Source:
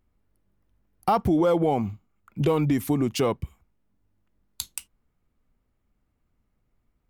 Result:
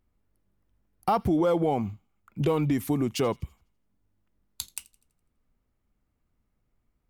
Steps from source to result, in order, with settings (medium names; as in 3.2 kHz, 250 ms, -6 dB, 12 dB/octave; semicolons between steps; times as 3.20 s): on a send: feedback echo behind a high-pass 83 ms, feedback 46%, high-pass 2.4 kHz, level -22 dB; on the sum: trim -2.5 dB